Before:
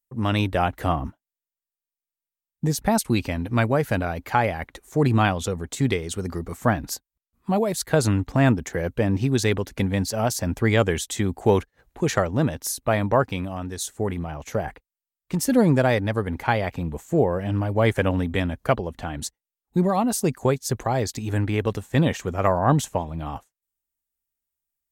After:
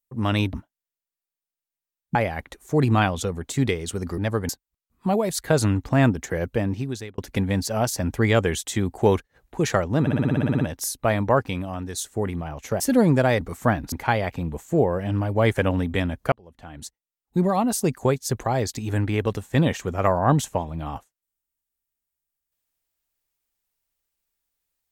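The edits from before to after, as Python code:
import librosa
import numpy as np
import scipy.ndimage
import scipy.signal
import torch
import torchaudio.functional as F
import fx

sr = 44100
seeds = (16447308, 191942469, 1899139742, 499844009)

y = fx.edit(x, sr, fx.cut(start_s=0.53, length_s=0.5),
    fx.cut(start_s=2.65, length_s=1.73),
    fx.swap(start_s=6.41, length_s=0.51, other_s=16.01, other_length_s=0.31),
    fx.fade_out_span(start_s=8.9, length_s=0.71),
    fx.stutter(start_s=12.44, slice_s=0.06, count=11),
    fx.cut(start_s=14.63, length_s=0.77),
    fx.fade_in_span(start_s=18.72, length_s=1.15), tone=tone)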